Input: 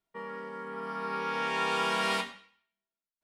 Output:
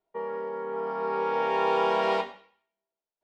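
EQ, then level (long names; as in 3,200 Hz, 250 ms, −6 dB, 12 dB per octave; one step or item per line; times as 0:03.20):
high-frequency loss of the air 130 metres
flat-topped bell 570 Hz +11.5 dB
−1.5 dB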